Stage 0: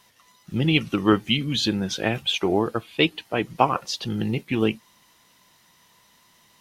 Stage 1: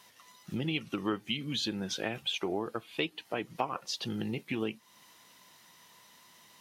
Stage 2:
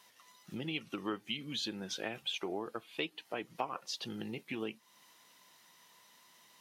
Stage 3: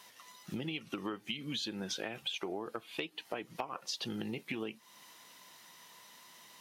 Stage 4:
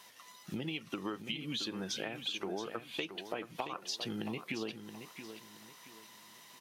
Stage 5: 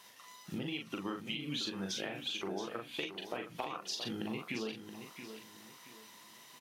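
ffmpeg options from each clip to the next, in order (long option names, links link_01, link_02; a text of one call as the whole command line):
ffmpeg -i in.wav -af "highpass=frequency=180:poles=1,acompressor=threshold=-35dB:ratio=2.5" out.wav
ffmpeg -i in.wav -af "lowshelf=frequency=130:gain=-11,volume=-4dB" out.wav
ffmpeg -i in.wav -af "acompressor=threshold=-41dB:ratio=6,volume=6dB" out.wav
ffmpeg -i in.wav -af "aecho=1:1:675|1350|2025:0.316|0.098|0.0304" out.wav
ffmpeg -i in.wav -filter_complex "[0:a]asplit=2[link_01][link_02];[link_02]adelay=41,volume=-4dB[link_03];[link_01][link_03]amix=inputs=2:normalize=0,volume=-1.5dB" out.wav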